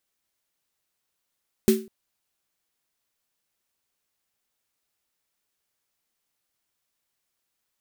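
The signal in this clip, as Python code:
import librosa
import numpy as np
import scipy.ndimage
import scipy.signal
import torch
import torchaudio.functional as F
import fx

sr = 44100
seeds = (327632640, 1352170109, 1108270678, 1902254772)

y = fx.drum_snare(sr, seeds[0], length_s=0.2, hz=220.0, second_hz=380.0, noise_db=-11.0, noise_from_hz=1300.0, decay_s=0.33, noise_decay_s=0.27)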